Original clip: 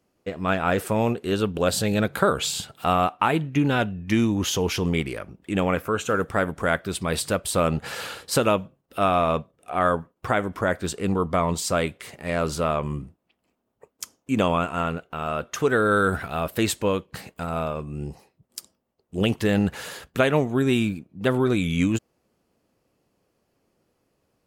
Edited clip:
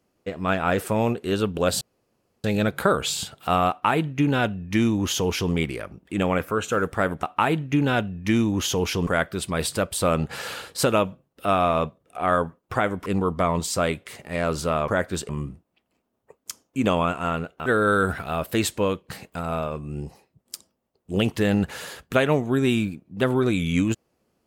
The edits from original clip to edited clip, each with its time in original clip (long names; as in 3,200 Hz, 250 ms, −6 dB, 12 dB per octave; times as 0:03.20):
0:01.81: splice in room tone 0.63 s
0:03.06–0:04.90: duplicate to 0:06.60
0:10.59–0:11.00: move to 0:12.82
0:15.19–0:15.70: remove